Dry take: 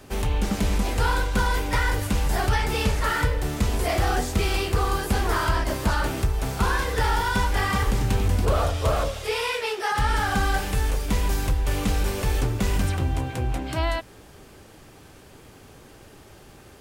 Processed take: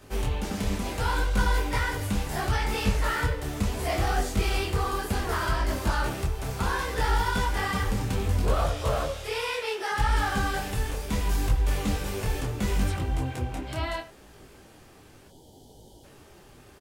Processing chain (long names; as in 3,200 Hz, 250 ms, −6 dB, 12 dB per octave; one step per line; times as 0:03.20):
far-end echo of a speakerphone 80 ms, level −14 dB
gain on a spectral selection 0:15.28–0:16.04, 970–2,900 Hz −22 dB
micro pitch shift up and down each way 24 cents